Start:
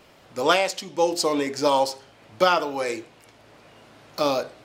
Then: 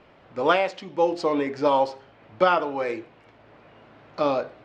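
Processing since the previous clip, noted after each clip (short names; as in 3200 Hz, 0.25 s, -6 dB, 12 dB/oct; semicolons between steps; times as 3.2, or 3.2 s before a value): LPF 2400 Hz 12 dB/oct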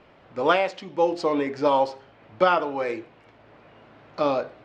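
nothing audible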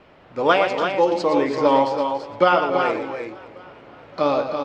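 vibrato 4 Hz 34 cents; tapped delay 0.117/0.284/0.295/0.31/0.335 s -8/-16.5/-17.5/-18.5/-6.5 dB; warbling echo 0.567 s, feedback 50%, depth 85 cents, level -22 dB; gain +3 dB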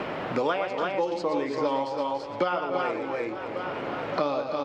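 three-band squash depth 100%; gain -8.5 dB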